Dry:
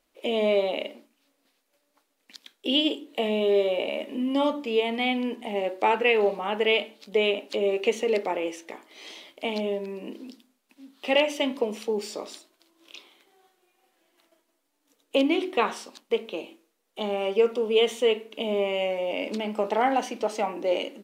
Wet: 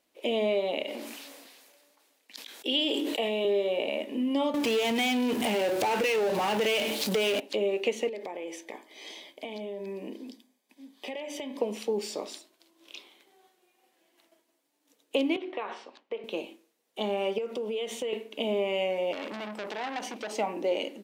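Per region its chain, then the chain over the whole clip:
0.83–3.45 HPF 420 Hz 6 dB/oct + sustainer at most 29 dB/s
4.54–7.4 high shelf 4900 Hz +10 dB + power-law curve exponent 0.5 + compressor 2:1, threshold -26 dBFS
8.08–11.61 compressor 12:1, threshold -32 dBFS + notch comb 1400 Hz
15.36–16.24 compressor 5:1, threshold -28 dBFS + BPF 370–2500 Hz
17.38–18.13 bell 570 Hz +3 dB 0.21 oct + compressor 8:1, threshold -29 dBFS
19.13–20.31 compressor 4:1, threshold -26 dBFS + core saturation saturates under 2500 Hz
whole clip: HPF 100 Hz; bell 1300 Hz -4.5 dB 0.43 oct; compressor 2.5:1, threshold -25 dBFS

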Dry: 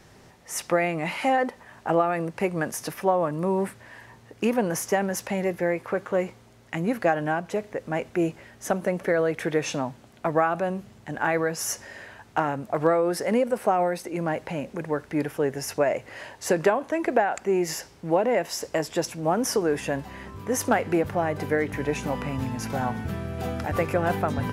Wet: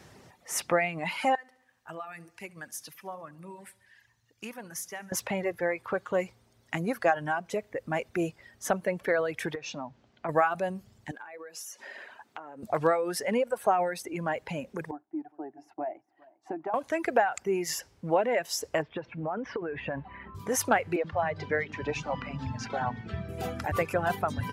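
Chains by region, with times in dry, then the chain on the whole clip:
1.35–5.12 passive tone stack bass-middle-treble 5-5-5 + feedback echo 70 ms, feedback 59%, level -12 dB
9.55–10.29 LPF 6000 Hz 24 dB/oct + compressor 1.5:1, threshold -42 dBFS
11.11–12.63 HPF 320 Hz + compressor 16:1, threshold -37 dBFS
14.91–16.74 gate -40 dBFS, range -8 dB + double band-pass 490 Hz, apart 1.2 oct + echo 0.405 s -16 dB
18.82–20.35 LPF 2800 Hz 24 dB/oct + compressor 12:1, threshold -24 dBFS
20.96–23.29 LPF 5700 Hz 24 dB/oct + bands offset in time highs, lows 80 ms, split 270 Hz
whole clip: HPF 61 Hz; reverb removal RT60 1.8 s; dynamic EQ 270 Hz, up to -6 dB, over -36 dBFS, Q 0.75

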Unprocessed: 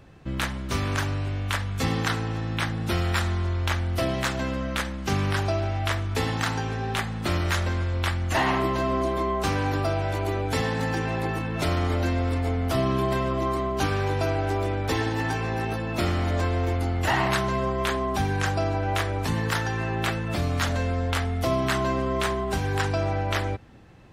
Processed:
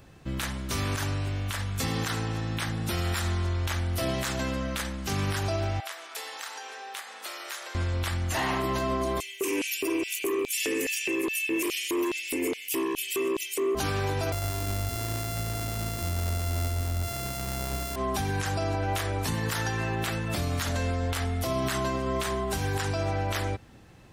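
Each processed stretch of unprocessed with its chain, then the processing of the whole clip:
5.8–7.75 Bessel high-pass 670 Hz, order 6 + compressor 3:1, threshold -37 dBFS + doubler 32 ms -13 dB
9.2–13.75 EQ curve 120 Hz 0 dB, 190 Hz -9 dB, 350 Hz +13 dB, 740 Hz -17 dB, 1100 Hz -29 dB, 1700 Hz 0 dB, 2600 Hz +14 dB, 3900 Hz -9 dB, 6600 Hz +9 dB, 15000 Hz +15 dB + LFO high-pass square 2.4 Hz 340–3600 Hz + core saturation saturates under 840 Hz
14.32–17.96 sample sorter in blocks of 64 samples + low shelf 160 Hz +11 dB
whole clip: high shelf 5300 Hz +12 dB; limiter -17.5 dBFS; gain -2 dB

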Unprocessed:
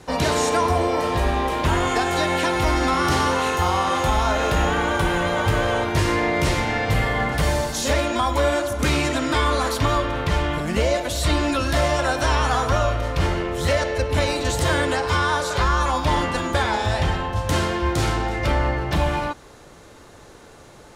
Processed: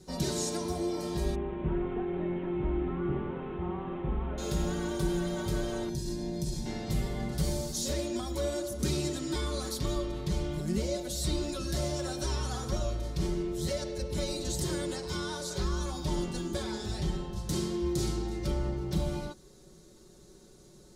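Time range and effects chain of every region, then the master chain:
1.35–4.38 delta modulation 16 kbps, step -26.5 dBFS + air absorption 370 m
5.89–6.66 band shelf 1500 Hz -9 dB 2.4 oct + comb 1.2 ms, depth 51% + compressor 3:1, threshold -22 dBFS
whole clip: band shelf 1400 Hz -13.5 dB 2.6 oct; notch 520 Hz, Q 12; comb 5.4 ms, depth 74%; gain -8.5 dB

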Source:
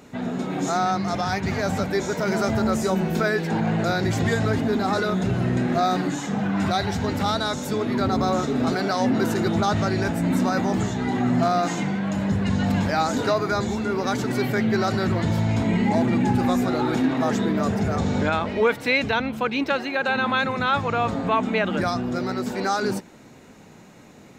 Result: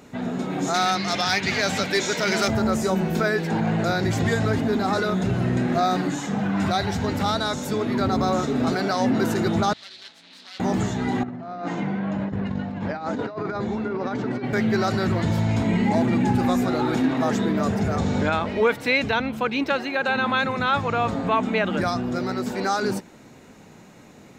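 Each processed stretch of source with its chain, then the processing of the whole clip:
0.74–2.48 weighting filter D + hard clip -12.5 dBFS
9.73–10.6 self-modulated delay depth 0.33 ms + band-pass 4000 Hz, Q 4
11.23–14.53 HPF 170 Hz 6 dB/oct + tape spacing loss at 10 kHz 28 dB + negative-ratio compressor -27 dBFS, ratio -0.5
whole clip: dry

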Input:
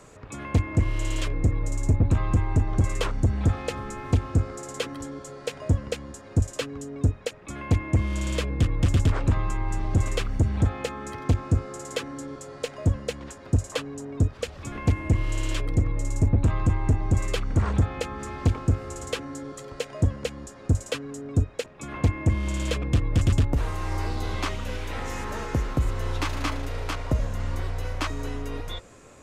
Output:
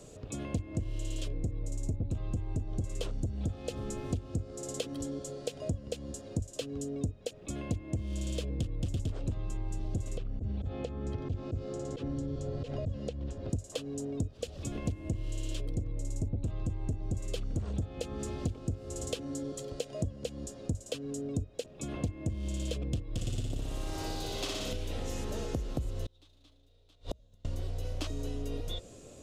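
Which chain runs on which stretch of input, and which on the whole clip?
10.17–13.5 tape spacing loss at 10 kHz 21 dB + auto swell 0.107 s + three-band squash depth 100%
23.02–24.73 low shelf 470 Hz -8.5 dB + flutter echo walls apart 10.3 m, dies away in 1.5 s
26.05–27.45 bell 3700 Hz +12.5 dB 0.36 oct + flipped gate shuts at -21 dBFS, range -34 dB
whole clip: band shelf 1400 Hz -12.5 dB; compressor 6:1, threshold -31 dBFS

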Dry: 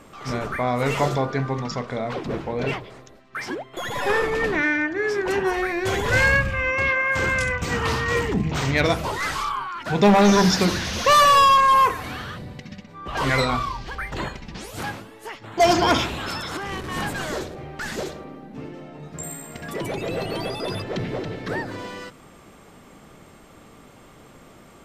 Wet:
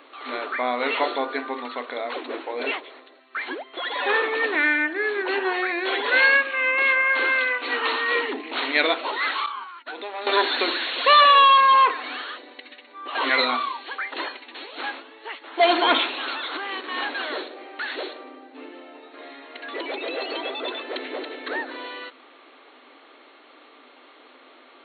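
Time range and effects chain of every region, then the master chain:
9.46–10.27 expander -25 dBFS + compressor 12:1, threshold -28 dBFS
whole clip: FFT band-pass 240–4400 Hz; tilt +2.5 dB/oct

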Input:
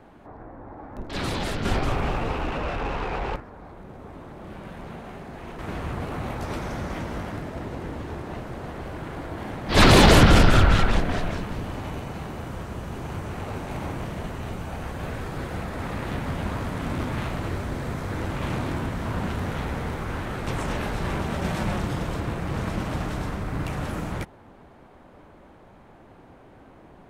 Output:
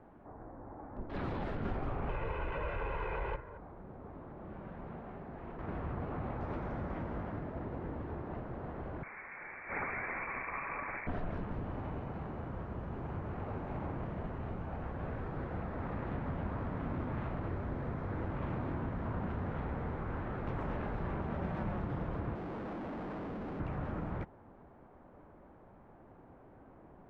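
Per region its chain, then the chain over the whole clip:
2.09–3.58 steep low-pass 8900 Hz + bell 2400 Hz +9 dB 1.3 oct + comb 2 ms, depth 63%
9.03–11.07 HPF 150 Hz + inverted band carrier 2500 Hz
22.35–23.6 HPF 220 Hz 24 dB/oct + Schmitt trigger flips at -34.5 dBFS
whole clip: compressor 6:1, threshold -25 dBFS; LPF 1500 Hz 12 dB/oct; gain -7 dB

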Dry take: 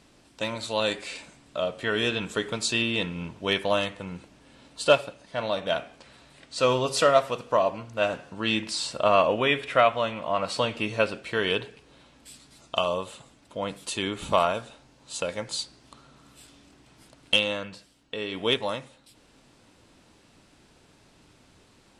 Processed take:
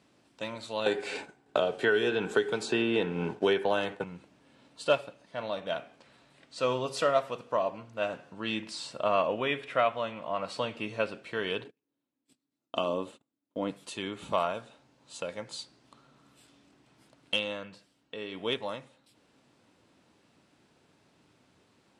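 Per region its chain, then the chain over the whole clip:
0.86–4.04 expander -41 dBFS + small resonant body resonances 410/780/1500 Hz, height 13 dB, ringing for 30 ms + three-band squash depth 100%
11.64–13.71 gate -45 dBFS, range -31 dB + bell 290 Hz +13.5 dB 0.9 oct
whole clip: HPF 110 Hz; high shelf 4000 Hz -6 dB; gain -6 dB

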